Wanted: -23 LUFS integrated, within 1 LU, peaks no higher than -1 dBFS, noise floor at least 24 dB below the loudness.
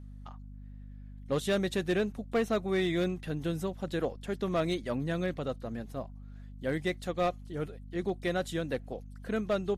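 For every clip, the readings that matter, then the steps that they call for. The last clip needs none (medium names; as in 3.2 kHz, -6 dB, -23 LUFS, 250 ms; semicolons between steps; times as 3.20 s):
clipped samples 0.7%; clipping level -22.5 dBFS; hum 50 Hz; highest harmonic 250 Hz; hum level -44 dBFS; loudness -33.0 LUFS; peak level -22.5 dBFS; loudness target -23.0 LUFS
-> clip repair -22.5 dBFS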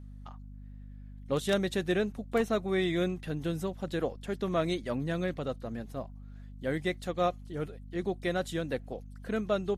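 clipped samples 0.0%; hum 50 Hz; highest harmonic 250 Hz; hum level -44 dBFS
-> hum notches 50/100/150/200/250 Hz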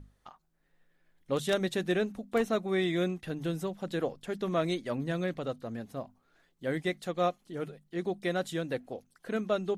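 hum not found; loudness -33.0 LUFS; peak level -14.0 dBFS; loudness target -23.0 LUFS
-> trim +10 dB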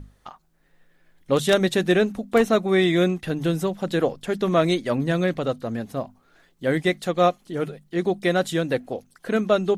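loudness -23.0 LUFS; peak level -4.0 dBFS; noise floor -62 dBFS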